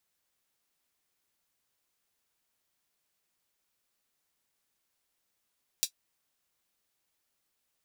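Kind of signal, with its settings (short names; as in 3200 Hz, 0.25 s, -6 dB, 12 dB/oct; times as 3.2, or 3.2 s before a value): closed hi-hat, high-pass 4200 Hz, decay 0.09 s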